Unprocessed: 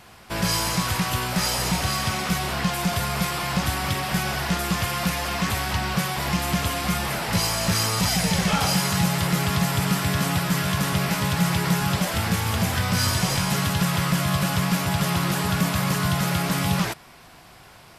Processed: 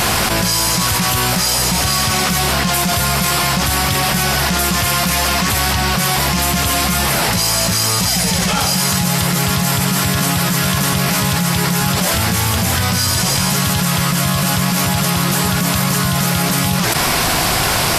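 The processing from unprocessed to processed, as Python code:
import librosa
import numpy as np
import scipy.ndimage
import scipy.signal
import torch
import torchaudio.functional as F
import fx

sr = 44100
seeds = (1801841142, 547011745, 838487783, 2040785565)

y = fx.bass_treble(x, sr, bass_db=0, treble_db=6)
y = fx.env_flatten(y, sr, amount_pct=100)
y = y * librosa.db_to_amplitude(1.0)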